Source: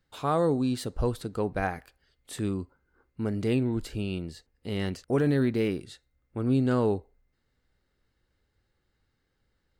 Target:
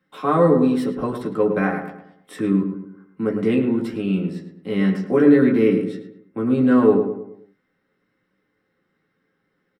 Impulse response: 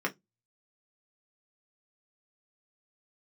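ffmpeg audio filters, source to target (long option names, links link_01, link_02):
-filter_complex "[0:a]asplit=2[link_01][link_02];[link_02]adelay=107,lowpass=frequency=1900:poles=1,volume=-6.5dB,asplit=2[link_03][link_04];[link_04]adelay=107,lowpass=frequency=1900:poles=1,volume=0.44,asplit=2[link_05][link_06];[link_06]adelay=107,lowpass=frequency=1900:poles=1,volume=0.44,asplit=2[link_07][link_08];[link_08]adelay=107,lowpass=frequency=1900:poles=1,volume=0.44,asplit=2[link_09][link_10];[link_10]adelay=107,lowpass=frequency=1900:poles=1,volume=0.44[link_11];[link_01][link_03][link_05][link_07][link_09][link_11]amix=inputs=6:normalize=0[link_12];[1:a]atrim=start_sample=2205[link_13];[link_12][link_13]afir=irnorm=-1:irlink=0"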